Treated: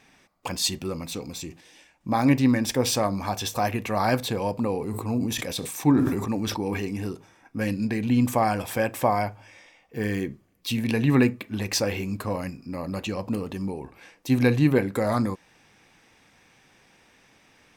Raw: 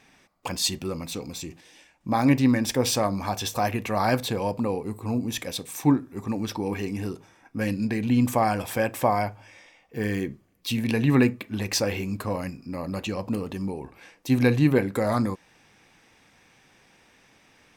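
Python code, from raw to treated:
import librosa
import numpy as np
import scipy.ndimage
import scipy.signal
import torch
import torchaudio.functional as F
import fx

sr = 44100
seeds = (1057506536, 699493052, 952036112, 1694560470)

y = fx.sustainer(x, sr, db_per_s=41.0, at=(4.59, 6.85))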